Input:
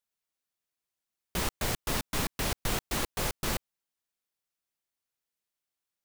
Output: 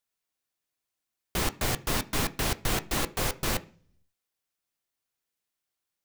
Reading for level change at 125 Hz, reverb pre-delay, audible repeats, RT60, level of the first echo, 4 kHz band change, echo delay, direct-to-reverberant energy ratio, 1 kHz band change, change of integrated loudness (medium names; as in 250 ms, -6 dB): +3.0 dB, 3 ms, no echo, 0.45 s, no echo, +2.5 dB, no echo, 10.0 dB, +3.0 dB, +2.5 dB